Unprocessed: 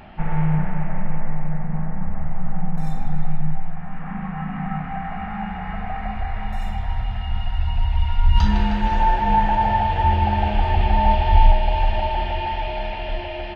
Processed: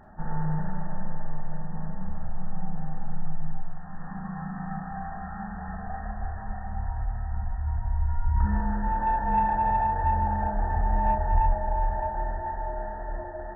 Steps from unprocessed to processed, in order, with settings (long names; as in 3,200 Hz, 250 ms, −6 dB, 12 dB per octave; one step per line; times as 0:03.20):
linear-phase brick-wall low-pass 1,900 Hz
four-comb reverb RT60 0.47 s, combs from 28 ms, DRR 2.5 dB
soft clipping −3.5 dBFS, distortion −25 dB
level −8.5 dB